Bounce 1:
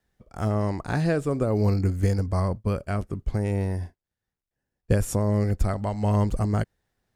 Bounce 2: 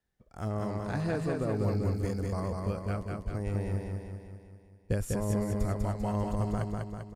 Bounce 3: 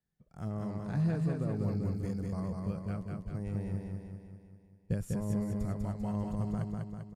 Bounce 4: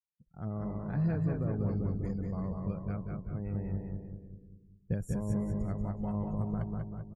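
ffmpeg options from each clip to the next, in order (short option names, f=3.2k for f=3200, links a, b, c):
-af "aecho=1:1:197|394|591|788|985|1182|1379|1576:0.708|0.396|0.222|0.124|0.0696|0.039|0.0218|0.0122,volume=-8.5dB"
-af "equalizer=f=160:w=1.6:g=13,volume=-8.5dB"
-filter_complex "[0:a]afftdn=nr=27:nf=-56,asplit=2[a][b];[b]asplit=3[c][d][e];[c]adelay=183,afreqshift=-55,volume=-10.5dB[f];[d]adelay=366,afreqshift=-110,volume=-21dB[g];[e]adelay=549,afreqshift=-165,volume=-31.4dB[h];[f][g][h]amix=inputs=3:normalize=0[i];[a][i]amix=inputs=2:normalize=0"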